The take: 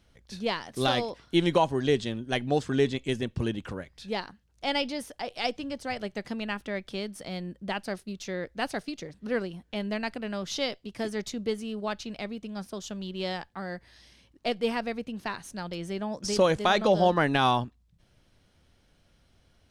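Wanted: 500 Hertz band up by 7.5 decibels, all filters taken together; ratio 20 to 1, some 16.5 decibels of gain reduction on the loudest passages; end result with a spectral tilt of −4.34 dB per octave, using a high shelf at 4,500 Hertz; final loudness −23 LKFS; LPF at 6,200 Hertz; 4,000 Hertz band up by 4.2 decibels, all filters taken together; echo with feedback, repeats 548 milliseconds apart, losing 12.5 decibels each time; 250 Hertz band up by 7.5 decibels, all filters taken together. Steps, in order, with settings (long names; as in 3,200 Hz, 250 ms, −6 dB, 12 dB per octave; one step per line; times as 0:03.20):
low-pass filter 6,200 Hz
parametric band 250 Hz +7.5 dB
parametric band 500 Hz +7 dB
parametric band 4,000 Hz +8.5 dB
high-shelf EQ 4,500 Hz −5.5 dB
downward compressor 20 to 1, threshold −27 dBFS
repeating echo 548 ms, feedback 24%, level −12.5 dB
level +10 dB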